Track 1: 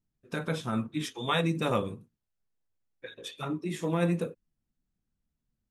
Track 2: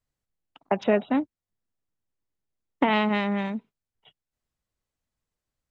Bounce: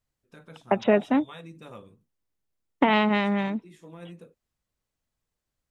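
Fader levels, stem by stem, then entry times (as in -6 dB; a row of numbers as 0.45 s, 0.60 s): -16.5 dB, +1.5 dB; 0.00 s, 0.00 s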